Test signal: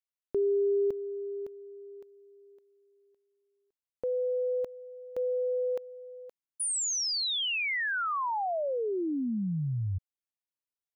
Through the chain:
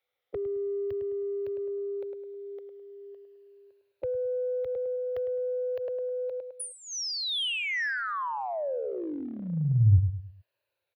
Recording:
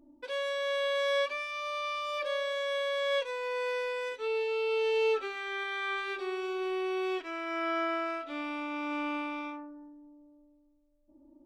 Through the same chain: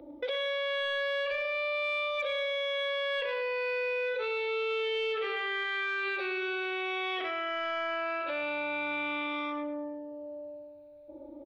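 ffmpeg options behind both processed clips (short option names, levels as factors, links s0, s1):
-filter_complex "[0:a]afftfilt=real='re*pow(10,9/40*sin(2*PI*(1.4*log(max(b,1)*sr/1024/100)/log(2)-(-0.44)*(pts-256)/sr)))':imag='im*pow(10,9/40*sin(2*PI*(1.4*log(max(b,1)*sr/1024/100)/log(2)-(-0.44)*(pts-256)/sr)))':win_size=1024:overlap=0.75,highpass=76,asplit=2[s0][s1];[s1]adelay=105,lowpass=f=2500:p=1,volume=0.398,asplit=2[s2][s3];[s3]adelay=105,lowpass=f=2500:p=1,volume=0.36,asplit=2[s4][s5];[s5]adelay=105,lowpass=f=2500:p=1,volume=0.36,asplit=2[s6][s7];[s7]adelay=105,lowpass=f=2500:p=1,volume=0.36[s8];[s0][s2][s4][s6][s8]amix=inputs=5:normalize=0,acrossover=split=160|1200[s9][s10][s11];[s10]acompressor=threshold=0.00794:ratio=6:attack=0.16:release=145:knee=1:detection=peak[s12];[s9][s12][s11]amix=inputs=3:normalize=0,firequalizer=gain_entry='entry(110,0);entry(190,-20);entry(500,8);entry(920,-1);entry(1900,4);entry(2800,3);entry(3900,1);entry(7700,-30);entry(11000,-7)':delay=0.05:min_phase=1,asplit=2[s13][s14];[s14]aeval=exprs='0.251*sin(PI/2*2.51*val(0)/0.251)':c=same,volume=0.473[s15];[s13][s15]amix=inputs=2:normalize=0,equalizer=f=250:t=o:w=2.8:g=7.5,acrossover=split=160[s16][s17];[s17]acompressor=threshold=0.02:ratio=4:attack=3.8:release=59:knee=2.83:detection=peak[s18];[s16][s18]amix=inputs=2:normalize=0,volume=1.19"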